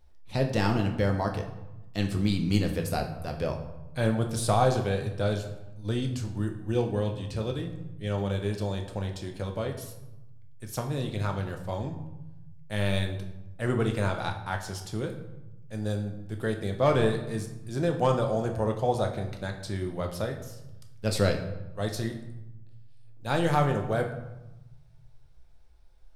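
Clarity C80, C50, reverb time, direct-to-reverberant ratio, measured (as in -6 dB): 11.0 dB, 8.5 dB, 1.0 s, 3.0 dB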